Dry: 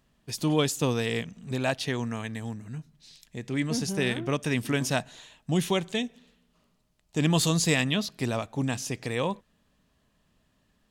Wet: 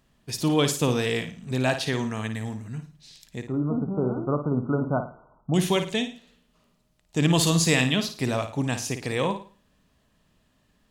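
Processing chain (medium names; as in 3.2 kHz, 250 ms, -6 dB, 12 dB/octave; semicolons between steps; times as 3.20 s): 3.45–5.54 s: brick-wall FIR low-pass 1.5 kHz; on a send: flutter echo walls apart 9.4 m, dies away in 0.37 s; on the sum: trim +2.5 dB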